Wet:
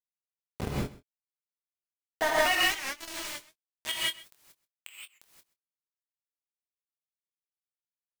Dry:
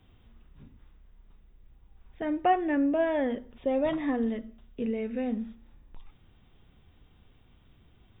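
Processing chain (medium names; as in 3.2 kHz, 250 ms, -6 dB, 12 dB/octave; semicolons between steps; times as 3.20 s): bass shelf 350 Hz +9.5 dB; level rider gain up to 6 dB; in parallel at -3 dB: saturation -13 dBFS, distortion -16 dB; on the sum: high-pass sweep 92 Hz -> 2.9 kHz, 1.42–2.58 s; small samples zeroed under -25.5 dBFS; doubling 24 ms -10.5 dB; on a send: delay 130 ms -20 dB; on the sum: gated-style reverb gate 200 ms rising, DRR -5 dB; warped record 78 rpm, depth 160 cents; trim -2 dB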